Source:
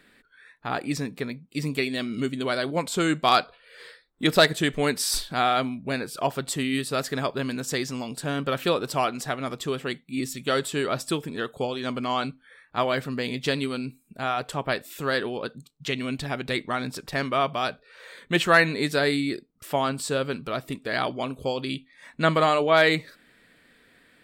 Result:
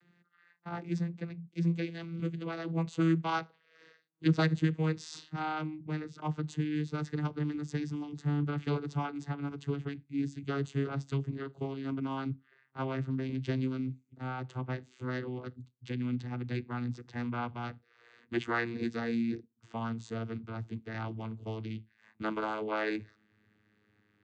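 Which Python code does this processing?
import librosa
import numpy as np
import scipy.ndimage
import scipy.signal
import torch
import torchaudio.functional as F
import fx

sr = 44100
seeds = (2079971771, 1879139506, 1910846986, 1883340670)

y = fx.vocoder_glide(x, sr, note=53, semitones=-9)
y = fx.peak_eq(y, sr, hz=580.0, db=-12.0, octaves=0.4)
y = F.gain(torch.from_numpy(y), -6.0).numpy()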